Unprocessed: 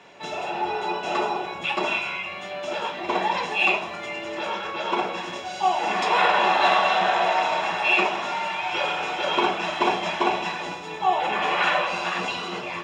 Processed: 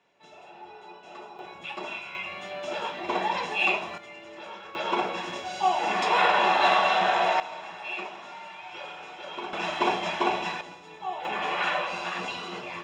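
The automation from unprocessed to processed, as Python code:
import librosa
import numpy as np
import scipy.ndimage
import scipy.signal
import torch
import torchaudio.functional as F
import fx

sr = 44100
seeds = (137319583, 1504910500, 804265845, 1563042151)

y = fx.gain(x, sr, db=fx.steps((0.0, -19.0), (1.39, -11.0), (2.15, -3.5), (3.98, -12.5), (4.75, -2.0), (7.4, -14.5), (9.53, -3.0), (10.61, -12.0), (11.25, -5.5)))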